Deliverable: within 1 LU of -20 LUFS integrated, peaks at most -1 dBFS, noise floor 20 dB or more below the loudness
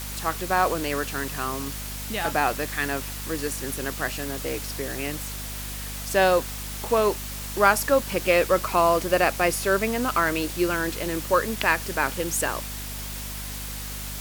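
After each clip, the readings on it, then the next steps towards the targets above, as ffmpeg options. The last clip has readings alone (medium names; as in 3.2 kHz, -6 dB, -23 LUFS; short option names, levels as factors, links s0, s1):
hum 50 Hz; highest harmonic 250 Hz; hum level -34 dBFS; noise floor -34 dBFS; noise floor target -45 dBFS; loudness -25.0 LUFS; peak level -3.5 dBFS; loudness target -20.0 LUFS
-> -af "bandreject=f=50:t=h:w=4,bandreject=f=100:t=h:w=4,bandreject=f=150:t=h:w=4,bandreject=f=200:t=h:w=4,bandreject=f=250:t=h:w=4"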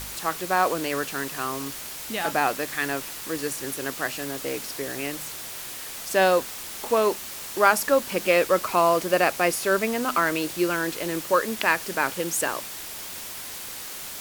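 hum not found; noise floor -37 dBFS; noise floor target -45 dBFS
-> -af "afftdn=nr=8:nf=-37"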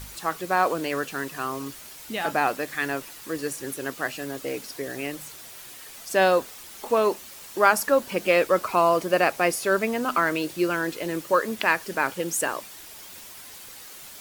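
noise floor -44 dBFS; noise floor target -45 dBFS
-> -af "afftdn=nr=6:nf=-44"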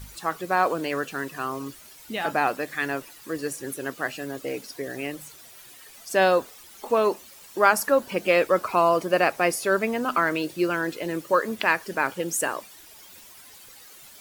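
noise floor -48 dBFS; loudness -25.0 LUFS; peak level -3.5 dBFS; loudness target -20.0 LUFS
-> -af "volume=1.78,alimiter=limit=0.891:level=0:latency=1"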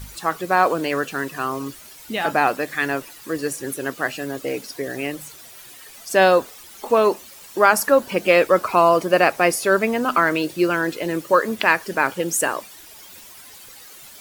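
loudness -20.0 LUFS; peak level -1.0 dBFS; noise floor -43 dBFS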